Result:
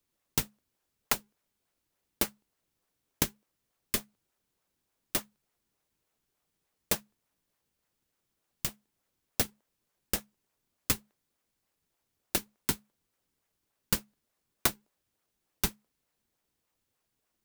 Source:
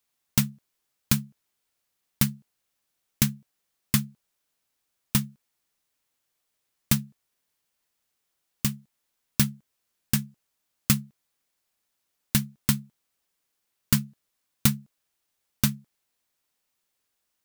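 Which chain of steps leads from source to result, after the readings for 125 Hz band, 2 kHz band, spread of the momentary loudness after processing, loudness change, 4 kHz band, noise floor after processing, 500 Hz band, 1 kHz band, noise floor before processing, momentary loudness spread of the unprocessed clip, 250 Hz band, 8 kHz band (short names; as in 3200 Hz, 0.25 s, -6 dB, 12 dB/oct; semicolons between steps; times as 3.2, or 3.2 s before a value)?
-15.5 dB, -2.5 dB, 5 LU, -6.0 dB, -4.0 dB, -82 dBFS, +6.5 dB, +1.0 dB, -79 dBFS, 9 LU, -13.0 dB, -4.5 dB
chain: HPF 370 Hz 24 dB/oct; in parallel at -4 dB: decimation with a swept rate 41×, swing 160% 3.4 Hz; on the sum: gain -4.5 dB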